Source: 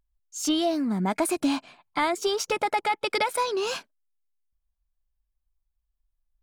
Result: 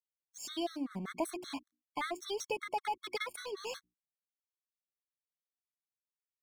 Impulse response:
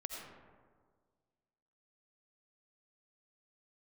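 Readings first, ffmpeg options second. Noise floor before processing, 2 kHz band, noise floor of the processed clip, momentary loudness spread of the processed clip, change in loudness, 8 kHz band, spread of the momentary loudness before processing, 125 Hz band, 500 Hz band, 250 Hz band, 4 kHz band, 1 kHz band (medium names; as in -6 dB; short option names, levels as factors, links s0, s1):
-80 dBFS, -11.5 dB, under -85 dBFS, 9 LU, -13.0 dB, -13.5 dB, 7 LU, -14.5 dB, -12.5 dB, -14.5 dB, -12.0 dB, -12.5 dB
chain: -af "aeval=exprs='sgn(val(0))*max(abs(val(0))-0.00944,0)':c=same,bandreject=f=60:t=h:w=6,bandreject=f=120:t=h:w=6,bandreject=f=180:t=h:w=6,bandreject=f=240:t=h:w=6,bandreject=f=300:t=h:w=6,bandreject=f=360:t=h:w=6,afftfilt=real='re*gt(sin(2*PI*5.2*pts/sr)*(1-2*mod(floor(b*sr/1024/1100),2)),0)':imag='im*gt(sin(2*PI*5.2*pts/sr)*(1-2*mod(floor(b*sr/1024/1100),2)),0)':win_size=1024:overlap=0.75,volume=0.422"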